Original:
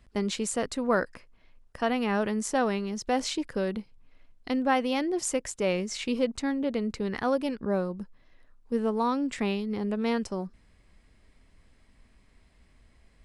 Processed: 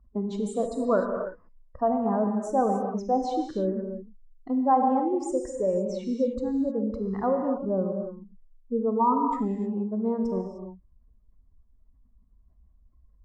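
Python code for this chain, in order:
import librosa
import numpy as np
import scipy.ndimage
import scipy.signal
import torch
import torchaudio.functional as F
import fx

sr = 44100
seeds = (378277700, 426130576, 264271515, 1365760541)

y = fx.spec_expand(x, sr, power=2.0)
y = fx.high_shelf_res(y, sr, hz=1600.0, db=-12.0, q=3.0)
y = fx.rev_gated(y, sr, seeds[0], gate_ms=330, shape='flat', drr_db=3.0)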